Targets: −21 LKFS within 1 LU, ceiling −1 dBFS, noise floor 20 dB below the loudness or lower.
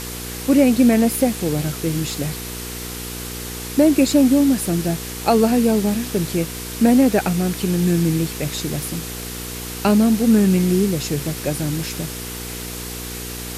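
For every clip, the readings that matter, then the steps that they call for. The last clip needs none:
mains hum 60 Hz; hum harmonics up to 480 Hz; level of the hum −32 dBFS; background noise floor −30 dBFS; target noise floor −40 dBFS; integrated loudness −19.5 LKFS; sample peak −4.0 dBFS; target loudness −21.0 LKFS
→ hum removal 60 Hz, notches 8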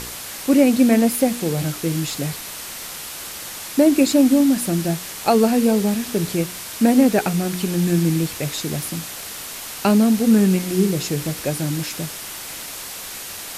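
mains hum none found; background noise floor −33 dBFS; target noise floor −40 dBFS
→ broadband denoise 7 dB, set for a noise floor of −33 dBFS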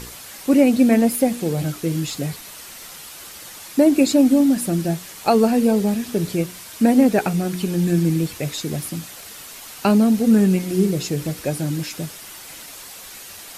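background noise floor −39 dBFS; integrated loudness −19.0 LKFS; sample peak −4.0 dBFS; target loudness −21.0 LKFS
→ level −2 dB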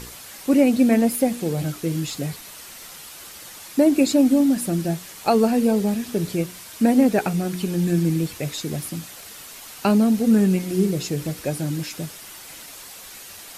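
integrated loudness −21.0 LKFS; sample peak −6.0 dBFS; background noise floor −41 dBFS

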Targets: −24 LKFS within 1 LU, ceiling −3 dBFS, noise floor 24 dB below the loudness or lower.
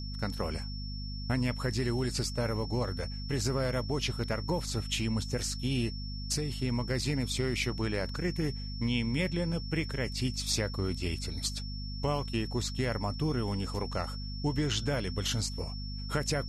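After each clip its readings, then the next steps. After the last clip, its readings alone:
mains hum 50 Hz; hum harmonics up to 250 Hz; level of the hum −36 dBFS; interfering tone 5,400 Hz; level of the tone −44 dBFS; integrated loudness −33.0 LKFS; sample peak −17.0 dBFS; target loudness −24.0 LKFS
→ mains-hum notches 50/100/150/200/250 Hz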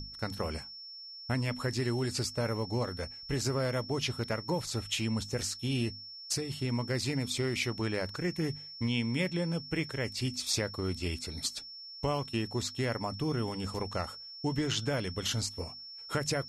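mains hum none found; interfering tone 5,400 Hz; level of the tone −44 dBFS
→ notch filter 5,400 Hz, Q 30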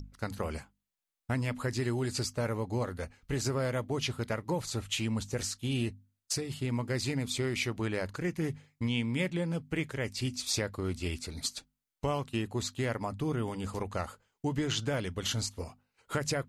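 interfering tone none found; integrated loudness −34.0 LKFS; sample peak −18.0 dBFS; target loudness −24.0 LKFS
→ level +10 dB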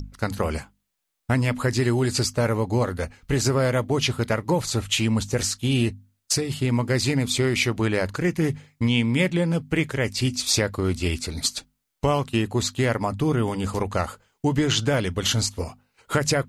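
integrated loudness −24.0 LKFS; sample peak −8.0 dBFS; background noise floor −76 dBFS

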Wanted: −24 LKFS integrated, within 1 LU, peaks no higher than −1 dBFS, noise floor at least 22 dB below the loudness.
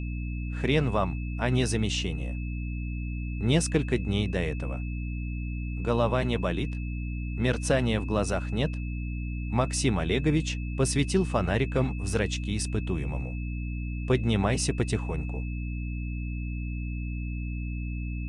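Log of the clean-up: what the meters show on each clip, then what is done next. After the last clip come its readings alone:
mains hum 60 Hz; hum harmonics up to 300 Hz; level of the hum −30 dBFS; interfering tone 2,600 Hz; level of the tone −45 dBFS; integrated loudness −29.0 LKFS; sample peak −10.0 dBFS; target loudness −24.0 LKFS
→ hum removal 60 Hz, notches 5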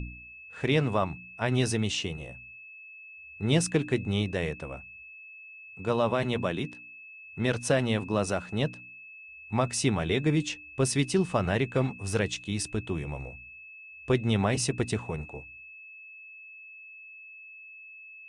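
mains hum none found; interfering tone 2,600 Hz; level of the tone −45 dBFS
→ notch filter 2,600 Hz, Q 30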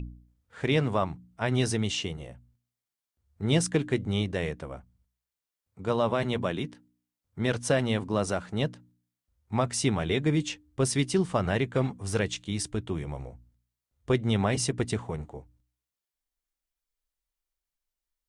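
interfering tone none found; integrated loudness −29.0 LKFS; sample peak −11.5 dBFS; target loudness −24.0 LKFS
→ level +5 dB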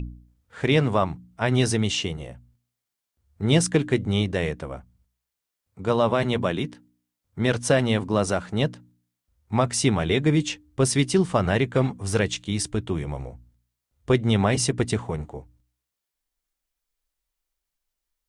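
integrated loudness −24.0 LKFS; sample peak −6.5 dBFS; background noise floor −85 dBFS

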